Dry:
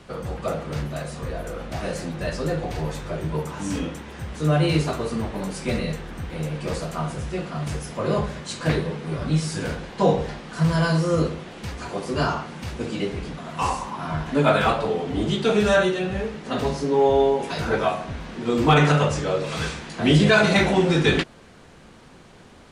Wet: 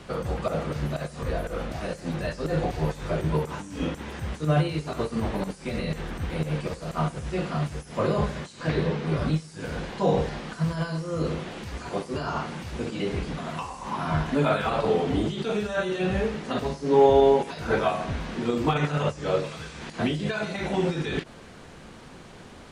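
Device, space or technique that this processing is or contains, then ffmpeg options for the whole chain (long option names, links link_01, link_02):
de-esser from a sidechain: -filter_complex "[0:a]asettb=1/sr,asplit=3[link_01][link_02][link_03];[link_01]atrim=end=8.614[link_04];[link_02]atrim=start=8.61:end=9.17,asetpts=PTS-STARTPTS,afade=type=in:duration=0.004:curve=qsin,afade=type=out:start_time=0.556:duration=0.004:curve=qsin,lowpass=6800[link_05];[link_03]atrim=start=9.166[link_06];[link_04][link_05]acrossfade=duration=0.004:curve1=hsin:curve2=qsin[link_07];[link_07][link_06]acrossfade=duration=0.004:curve1=qsin:curve2=hsin,asplit=2[link_08][link_09];[link_09]highpass=frequency=5400:width=0.5412,highpass=frequency=5400:width=1.3066,apad=whole_len=1001837[link_10];[link_08][link_10]sidechaincompress=threshold=-51dB:ratio=12:attack=0.88:release=53,volume=2.5dB"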